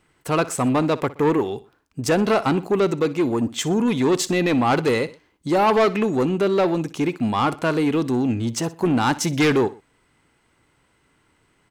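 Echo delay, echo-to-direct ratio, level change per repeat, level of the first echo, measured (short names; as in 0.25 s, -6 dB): 61 ms, -17.5 dB, -7.5 dB, -18.0 dB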